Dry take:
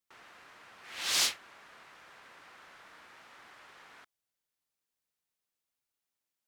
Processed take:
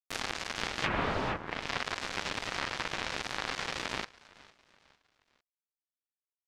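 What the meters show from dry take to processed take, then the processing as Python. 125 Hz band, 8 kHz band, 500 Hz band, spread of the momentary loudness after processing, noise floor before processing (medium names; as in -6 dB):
+24.0 dB, -7.0 dB, +16.5 dB, 5 LU, under -85 dBFS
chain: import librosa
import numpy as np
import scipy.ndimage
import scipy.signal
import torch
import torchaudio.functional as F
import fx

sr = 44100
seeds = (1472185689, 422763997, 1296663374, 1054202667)

p1 = fx.fuzz(x, sr, gain_db=50.0, gate_db=-51.0)
p2 = fx.env_lowpass_down(p1, sr, base_hz=810.0, full_db=-19.5)
p3 = p2 + fx.echo_feedback(p2, sr, ms=454, feedback_pct=40, wet_db=-21.5, dry=0)
y = fx.ring_lfo(p3, sr, carrier_hz=510.0, swing_pct=40, hz=1.3)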